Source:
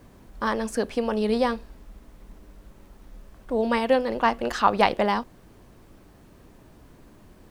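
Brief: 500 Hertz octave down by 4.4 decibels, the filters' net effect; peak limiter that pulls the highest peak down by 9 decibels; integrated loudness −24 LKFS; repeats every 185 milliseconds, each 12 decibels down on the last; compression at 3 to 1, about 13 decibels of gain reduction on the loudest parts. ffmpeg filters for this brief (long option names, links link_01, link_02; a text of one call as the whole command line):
ffmpeg -i in.wav -af "equalizer=frequency=500:width_type=o:gain=-5,acompressor=threshold=-33dB:ratio=3,alimiter=level_in=2.5dB:limit=-24dB:level=0:latency=1,volume=-2.5dB,aecho=1:1:185|370|555:0.251|0.0628|0.0157,volume=14.5dB" out.wav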